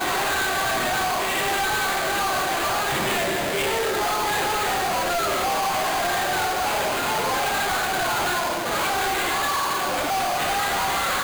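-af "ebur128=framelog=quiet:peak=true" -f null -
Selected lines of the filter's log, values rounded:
Integrated loudness:
  I:         -22.5 LUFS
  Threshold: -32.4 LUFS
Loudness range:
  LRA:         0.4 LU
  Threshold: -42.5 LUFS
  LRA low:   -22.6 LUFS
  LRA high:  -22.2 LUFS
True peak:
  Peak:      -19.1 dBFS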